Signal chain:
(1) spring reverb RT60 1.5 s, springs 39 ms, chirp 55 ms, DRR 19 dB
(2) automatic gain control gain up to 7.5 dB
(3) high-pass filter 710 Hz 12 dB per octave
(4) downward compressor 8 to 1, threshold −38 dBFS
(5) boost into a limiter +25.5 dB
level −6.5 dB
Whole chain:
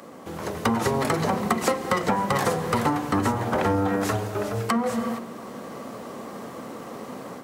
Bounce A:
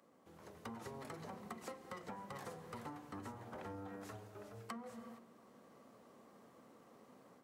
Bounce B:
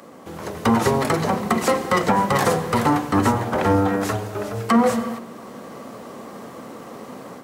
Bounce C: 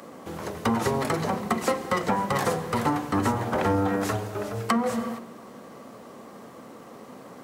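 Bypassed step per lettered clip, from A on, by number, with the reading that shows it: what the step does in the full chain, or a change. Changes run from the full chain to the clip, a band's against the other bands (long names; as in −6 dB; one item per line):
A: 5, change in crest factor +4.5 dB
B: 4, average gain reduction 2.5 dB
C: 2, change in crest factor +2.0 dB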